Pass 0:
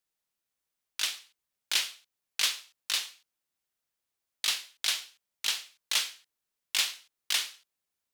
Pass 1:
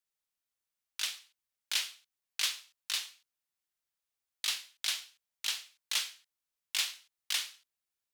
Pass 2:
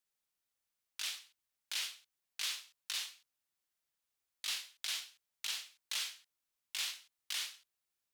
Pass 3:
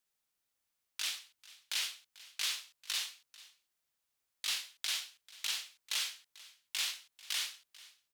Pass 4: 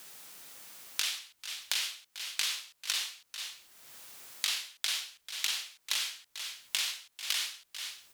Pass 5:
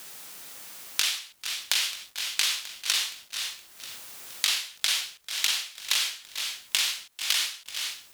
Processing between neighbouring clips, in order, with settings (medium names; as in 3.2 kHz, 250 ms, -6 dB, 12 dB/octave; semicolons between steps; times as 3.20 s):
peaking EQ 280 Hz -5.5 dB 2.8 oct; trim -4 dB
peak limiter -27.5 dBFS, peak gain reduction 10.5 dB; trim +1 dB
delay 442 ms -20 dB; trim +3 dB
three bands compressed up and down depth 100%; trim +4 dB
bit-crushed delay 469 ms, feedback 55%, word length 8-bit, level -11.5 dB; trim +6.5 dB